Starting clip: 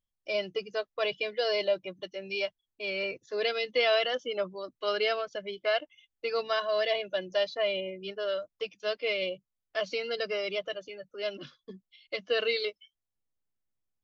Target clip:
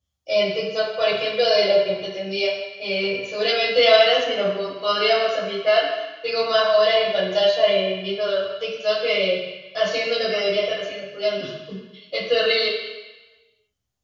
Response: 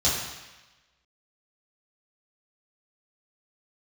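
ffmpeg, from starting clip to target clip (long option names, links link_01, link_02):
-filter_complex "[1:a]atrim=start_sample=2205,asetrate=42777,aresample=44100[link_01];[0:a][link_01]afir=irnorm=-1:irlink=0,volume=-3.5dB"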